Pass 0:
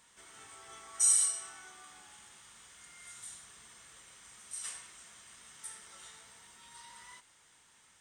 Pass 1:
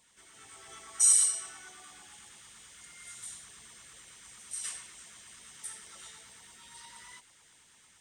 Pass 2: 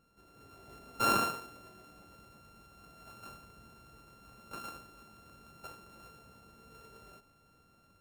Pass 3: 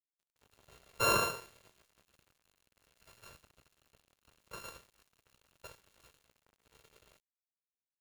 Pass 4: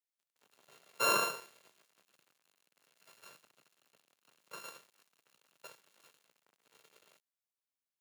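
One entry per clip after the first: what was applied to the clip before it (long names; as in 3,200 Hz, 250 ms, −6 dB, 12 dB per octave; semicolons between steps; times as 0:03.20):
automatic gain control gain up to 5 dB; auto-filter notch saw down 8.9 Hz 460–1,700 Hz; level −1.5 dB
samples sorted by size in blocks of 32 samples; tilt shelving filter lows +9.5 dB, about 850 Hz; level −1.5 dB
comb filter 1.9 ms, depth 93%; dead-zone distortion −51 dBFS
high-pass filter 150 Hz 24 dB per octave; low-shelf EQ 320 Hz −7 dB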